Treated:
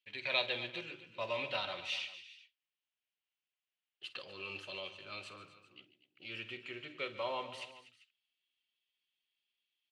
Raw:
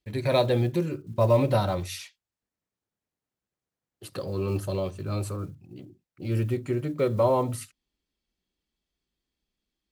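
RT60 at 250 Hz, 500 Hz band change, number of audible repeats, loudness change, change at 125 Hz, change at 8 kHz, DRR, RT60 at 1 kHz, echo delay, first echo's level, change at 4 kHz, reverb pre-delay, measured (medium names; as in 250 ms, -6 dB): no reverb, -17.5 dB, 4, -13.0 dB, -30.5 dB, -17.0 dB, no reverb, no reverb, 50 ms, -15.5 dB, +0.5 dB, no reverb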